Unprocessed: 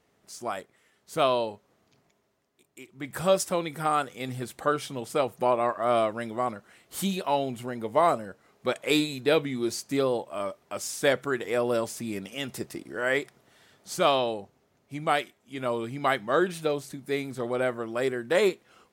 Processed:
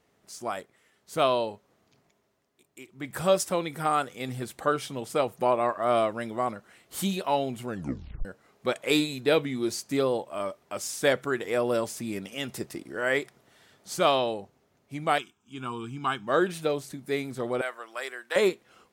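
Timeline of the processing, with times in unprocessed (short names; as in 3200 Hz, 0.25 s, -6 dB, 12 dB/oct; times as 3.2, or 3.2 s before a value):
7.66 tape stop 0.59 s
15.18–16.27 fixed phaser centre 2900 Hz, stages 8
17.61–18.36 HPF 950 Hz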